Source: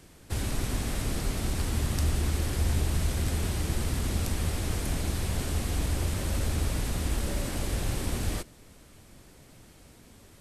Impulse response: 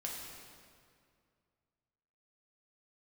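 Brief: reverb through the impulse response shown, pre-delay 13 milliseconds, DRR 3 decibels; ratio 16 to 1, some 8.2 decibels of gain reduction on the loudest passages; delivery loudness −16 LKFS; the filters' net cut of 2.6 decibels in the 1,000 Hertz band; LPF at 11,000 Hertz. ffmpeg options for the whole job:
-filter_complex "[0:a]lowpass=11000,equalizer=frequency=1000:width_type=o:gain=-3.5,acompressor=threshold=-31dB:ratio=16,asplit=2[link_01][link_02];[1:a]atrim=start_sample=2205,adelay=13[link_03];[link_02][link_03]afir=irnorm=-1:irlink=0,volume=-3.5dB[link_04];[link_01][link_04]amix=inputs=2:normalize=0,volume=19.5dB"

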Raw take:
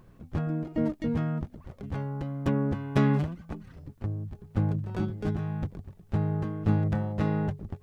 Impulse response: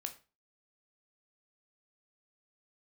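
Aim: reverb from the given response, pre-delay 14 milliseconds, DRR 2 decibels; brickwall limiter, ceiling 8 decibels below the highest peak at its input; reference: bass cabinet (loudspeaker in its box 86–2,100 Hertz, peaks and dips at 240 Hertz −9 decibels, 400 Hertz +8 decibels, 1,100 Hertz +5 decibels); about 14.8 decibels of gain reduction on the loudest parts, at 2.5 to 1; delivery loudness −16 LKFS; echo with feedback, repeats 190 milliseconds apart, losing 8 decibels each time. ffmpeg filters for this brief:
-filter_complex "[0:a]acompressor=threshold=-42dB:ratio=2.5,alimiter=level_in=8.5dB:limit=-24dB:level=0:latency=1,volume=-8.5dB,aecho=1:1:190|380|570|760|950:0.398|0.159|0.0637|0.0255|0.0102,asplit=2[link_01][link_02];[1:a]atrim=start_sample=2205,adelay=14[link_03];[link_02][link_03]afir=irnorm=-1:irlink=0,volume=0dB[link_04];[link_01][link_04]amix=inputs=2:normalize=0,highpass=frequency=86:width=0.5412,highpass=frequency=86:width=1.3066,equalizer=frequency=240:width_type=q:width=4:gain=-9,equalizer=frequency=400:width_type=q:width=4:gain=8,equalizer=frequency=1100:width_type=q:width=4:gain=5,lowpass=frequency=2100:width=0.5412,lowpass=frequency=2100:width=1.3066,volume=25dB"

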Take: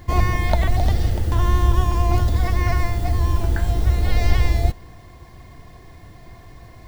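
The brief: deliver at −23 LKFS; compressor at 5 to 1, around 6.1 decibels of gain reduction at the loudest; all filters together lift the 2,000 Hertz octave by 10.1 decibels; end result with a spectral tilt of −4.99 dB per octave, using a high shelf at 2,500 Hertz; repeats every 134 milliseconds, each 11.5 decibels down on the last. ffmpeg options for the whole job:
ffmpeg -i in.wav -af "equalizer=frequency=2000:width_type=o:gain=8.5,highshelf=frequency=2500:gain=6.5,acompressor=threshold=-17dB:ratio=5,aecho=1:1:134|268|402:0.266|0.0718|0.0194,volume=0.5dB" out.wav

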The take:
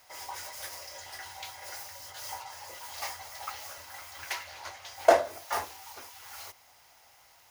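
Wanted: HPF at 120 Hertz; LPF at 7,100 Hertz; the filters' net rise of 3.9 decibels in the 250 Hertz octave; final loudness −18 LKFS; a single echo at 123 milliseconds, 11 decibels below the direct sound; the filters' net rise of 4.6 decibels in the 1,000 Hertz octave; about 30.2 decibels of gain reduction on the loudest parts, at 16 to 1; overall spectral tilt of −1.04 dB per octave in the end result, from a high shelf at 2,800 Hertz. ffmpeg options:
ffmpeg -i in.wav -af "highpass=120,lowpass=7100,equalizer=frequency=250:width_type=o:gain=5.5,equalizer=frequency=1000:width_type=o:gain=5.5,highshelf=frequency=2800:gain=7,acompressor=threshold=-41dB:ratio=16,aecho=1:1:123:0.282,volume=26dB" out.wav

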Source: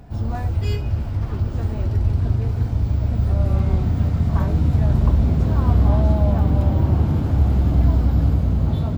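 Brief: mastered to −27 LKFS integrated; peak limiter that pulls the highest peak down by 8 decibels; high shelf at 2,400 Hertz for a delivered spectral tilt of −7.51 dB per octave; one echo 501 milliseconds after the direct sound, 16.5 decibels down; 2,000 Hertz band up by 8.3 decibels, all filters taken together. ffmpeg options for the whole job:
ffmpeg -i in.wav -af "equalizer=frequency=2000:width_type=o:gain=7,highshelf=frequency=2400:gain=8,alimiter=limit=-12.5dB:level=0:latency=1,aecho=1:1:501:0.15,volume=-5dB" out.wav

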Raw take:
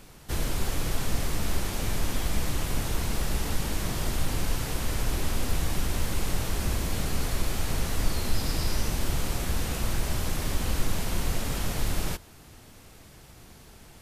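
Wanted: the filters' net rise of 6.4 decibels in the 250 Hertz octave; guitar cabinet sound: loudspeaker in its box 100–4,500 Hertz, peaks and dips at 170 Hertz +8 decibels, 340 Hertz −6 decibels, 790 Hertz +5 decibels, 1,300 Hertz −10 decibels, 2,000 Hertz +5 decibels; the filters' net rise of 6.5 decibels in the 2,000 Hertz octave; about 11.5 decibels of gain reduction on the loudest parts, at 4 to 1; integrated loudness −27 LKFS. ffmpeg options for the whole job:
ffmpeg -i in.wav -af "equalizer=frequency=250:width_type=o:gain=6.5,equalizer=frequency=2000:width_type=o:gain=6,acompressor=threshold=-32dB:ratio=4,highpass=100,equalizer=frequency=170:width_type=q:width=4:gain=8,equalizer=frequency=340:width_type=q:width=4:gain=-6,equalizer=frequency=790:width_type=q:width=4:gain=5,equalizer=frequency=1300:width_type=q:width=4:gain=-10,equalizer=frequency=2000:width_type=q:width=4:gain=5,lowpass=frequency=4500:width=0.5412,lowpass=frequency=4500:width=1.3066,volume=11.5dB" out.wav

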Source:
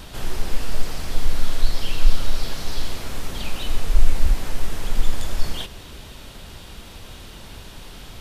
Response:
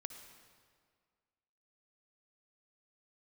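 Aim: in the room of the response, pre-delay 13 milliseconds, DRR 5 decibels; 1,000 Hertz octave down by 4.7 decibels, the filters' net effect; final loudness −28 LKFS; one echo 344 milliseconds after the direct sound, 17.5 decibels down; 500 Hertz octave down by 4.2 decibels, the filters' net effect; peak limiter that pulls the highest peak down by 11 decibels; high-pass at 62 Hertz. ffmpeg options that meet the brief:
-filter_complex "[0:a]highpass=62,equalizer=frequency=500:width_type=o:gain=-4,equalizer=frequency=1000:width_type=o:gain=-5,alimiter=level_in=2dB:limit=-24dB:level=0:latency=1,volume=-2dB,aecho=1:1:344:0.133,asplit=2[link_01][link_02];[1:a]atrim=start_sample=2205,adelay=13[link_03];[link_02][link_03]afir=irnorm=-1:irlink=0,volume=-1.5dB[link_04];[link_01][link_04]amix=inputs=2:normalize=0,volume=7dB"

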